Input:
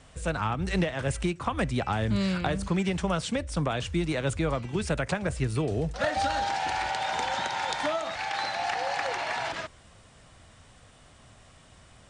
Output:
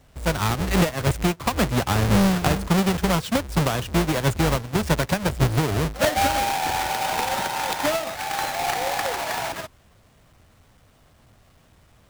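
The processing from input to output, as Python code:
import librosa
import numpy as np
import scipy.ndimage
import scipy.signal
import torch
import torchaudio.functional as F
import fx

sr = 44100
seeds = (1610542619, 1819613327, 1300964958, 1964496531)

y = fx.halfwave_hold(x, sr)
y = fx.upward_expand(y, sr, threshold_db=-40.0, expansion=1.5)
y = y * 10.0 ** (4.0 / 20.0)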